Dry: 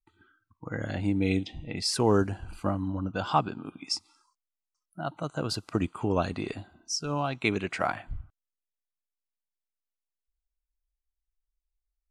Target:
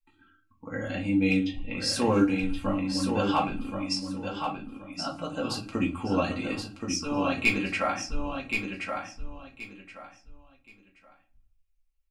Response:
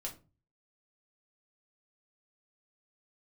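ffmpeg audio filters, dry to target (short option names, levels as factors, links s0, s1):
-filter_complex "[0:a]equalizer=f=2500:t=o:w=0.45:g=8.5,aecho=1:1:3.7:0.58,volume=4.47,asoftclip=hard,volume=0.224,aecho=1:1:1075|2150|3225:0.531|0.127|0.0306[s0];[1:a]atrim=start_sample=2205[s1];[s0][s1]afir=irnorm=-1:irlink=0"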